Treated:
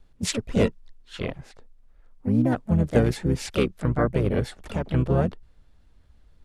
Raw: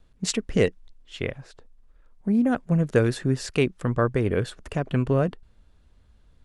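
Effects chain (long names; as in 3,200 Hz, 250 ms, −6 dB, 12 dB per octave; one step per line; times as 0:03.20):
dynamic equaliser 1,900 Hz, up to −3 dB, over −40 dBFS, Q 1.2
pitch-shifted copies added −12 semitones −4 dB, +4 semitones −6 dB
level −2 dB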